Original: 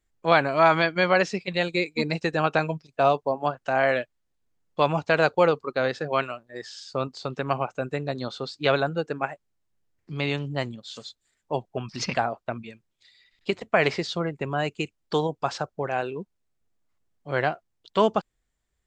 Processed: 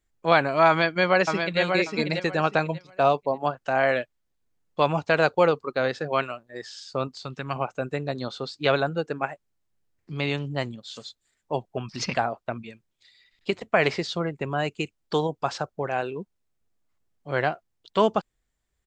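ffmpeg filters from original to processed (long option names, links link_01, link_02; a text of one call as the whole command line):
ffmpeg -i in.wav -filter_complex "[0:a]asplit=2[link_01][link_02];[link_02]afade=type=in:start_time=0.68:duration=0.01,afade=type=out:start_time=1.6:duration=0.01,aecho=0:1:590|1180|1770:0.530884|0.106177|0.0212354[link_03];[link_01][link_03]amix=inputs=2:normalize=0,asettb=1/sr,asplit=3[link_04][link_05][link_06];[link_04]atrim=end=7.134[link_07];[link_05]atrim=start=7.13:end=7.56,asetpts=PTS-STARTPTS,afade=type=in:duration=0.004:curve=qsin,afade=type=out:start_time=0.426:duration=0.004:curve=qsin,equalizer=frequency=530:width_type=o:width=2.1:gain=-8.5[link_08];[link_06]atrim=start=7.556[link_09];[link_07][link_08]acrossfade=duration=0.004:curve1=hsin:curve2=qsin[link_10];[link_10][link_09]acrossfade=duration=0.004:curve1=qsin:curve2=hsin" out.wav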